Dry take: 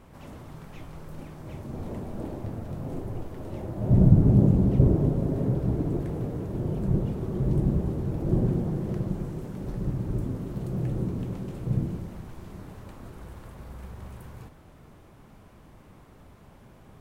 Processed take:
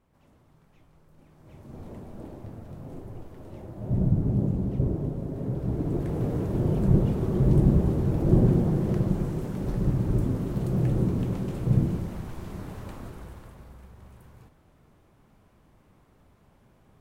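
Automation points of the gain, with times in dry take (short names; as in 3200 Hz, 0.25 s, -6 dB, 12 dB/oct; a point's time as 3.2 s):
1.14 s -17 dB
1.75 s -6.5 dB
5.32 s -6.5 dB
6.33 s +4.5 dB
12.95 s +4.5 dB
13.88 s -8 dB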